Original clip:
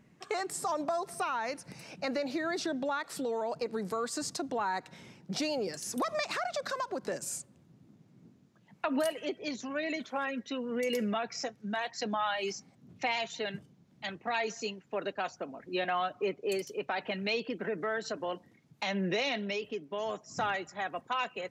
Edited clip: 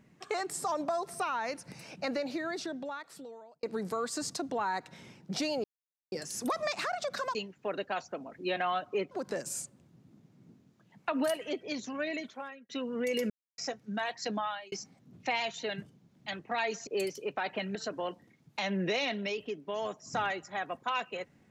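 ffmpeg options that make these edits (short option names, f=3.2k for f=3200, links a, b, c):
-filter_complex "[0:a]asplit=11[a][b][c][d][e][f][g][h][i][j][k];[a]atrim=end=3.63,asetpts=PTS-STARTPTS,afade=t=out:st=2.08:d=1.55[l];[b]atrim=start=3.63:end=5.64,asetpts=PTS-STARTPTS,afade=t=in:d=0.004:c=hsin,afade=t=out:st=2.006:d=0.004:c=hsin,apad=pad_dur=0.48[m];[c]atrim=start=5.64:end=6.872,asetpts=PTS-STARTPTS,afade=t=in:d=0.004:c=hsin[n];[d]atrim=start=14.628:end=16.392[o];[e]atrim=start=6.868:end=10.45,asetpts=PTS-STARTPTS,afade=t=out:st=2.922:d=0.66[p];[f]atrim=start=10.45:end=11.06,asetpts=PTS-STARTPTS,afade=t=in:d=0.004:c=hsin,afade=t=out:st=0.606:d=0.004:c=hsin[q];[g]atrim=start=11.06:end=11.34,asetpts=PTS-STARTPTS,volume=0[r];[h]atrim=start=11.34:end=12.48,asetpts=PTS-STARTPTS,afade=t=in:d=0.004:c=hsin,afade=t=out:st=0.77:d=0.37[s];[i]atrim=start=12.48:end=14.632,asetpts=PTS-STARTPTS,afade=t=in:d=0.004:c=hsin[t];[j]atrim=start=16.388:end=17.272[u];[k]atrim=start=17.988[v];[l][m][n]concat=n=3:v=0:a=1[w];[w][o]acrossfade=d=0.004:c1=hsin:c2=hsin[x];[p][q][r][s][t]concat=n=5:v=0:a=1[y];[x][y]acrossfade=d=0.004:c1=hsin:c2=hsin[z];[z][u]acrossfade=d=0.004:c1=hsin:c2=hsin[aa];[aa][v]acrossfade=d=0.004:c1=hsin:c2=hsin"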